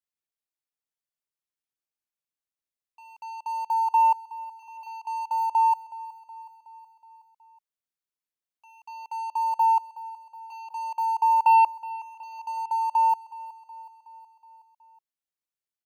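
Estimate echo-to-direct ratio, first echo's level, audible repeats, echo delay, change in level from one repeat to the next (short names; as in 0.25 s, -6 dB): -15.5 dB, -17.5 dB, 4, 0.37 s, -4.5 dB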